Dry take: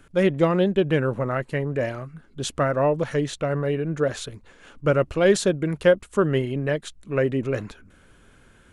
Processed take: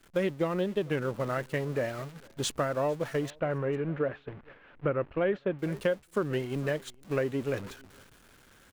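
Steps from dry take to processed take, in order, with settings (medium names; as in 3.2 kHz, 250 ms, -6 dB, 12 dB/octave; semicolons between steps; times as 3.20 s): jump at every zero crossing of -32.5 dBFS; 3.30–5.59 s: low-pass 2.6 kHz 24 dB/octave; delay 452 ms -21.5 dB; compression 5:1, threshold -26 dBFS, peak gain reduction 13.5 dB; expander -26 dBFS; bass shelf 140 Hz -6 dB; warped record 45 rpm, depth 100 cents; trim +1 dB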